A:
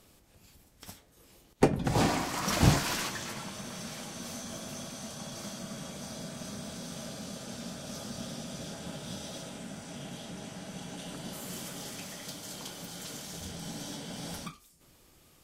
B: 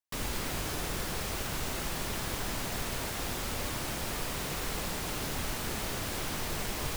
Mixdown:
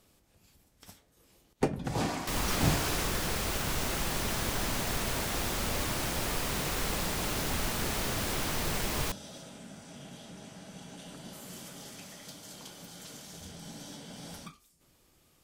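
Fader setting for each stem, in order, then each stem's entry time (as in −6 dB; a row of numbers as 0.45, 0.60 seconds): −5.0, +2.5 decibels; 0.00, 2.15 seconds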